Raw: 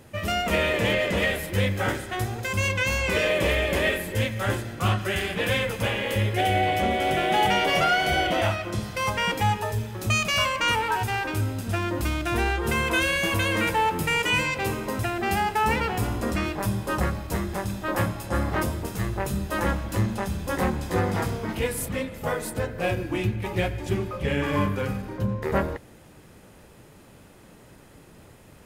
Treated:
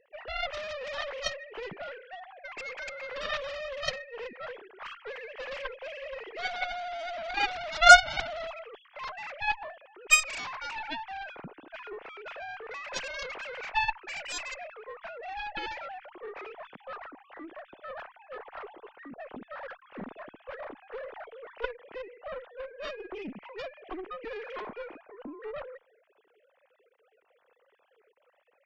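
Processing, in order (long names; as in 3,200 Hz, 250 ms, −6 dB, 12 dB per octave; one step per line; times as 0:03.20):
three sine waves on the formant tracks
harmonic generator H 3 −23 dB, 4 −26 dB, 7 −16 dB, 8 −37 dB, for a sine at −2 dBFS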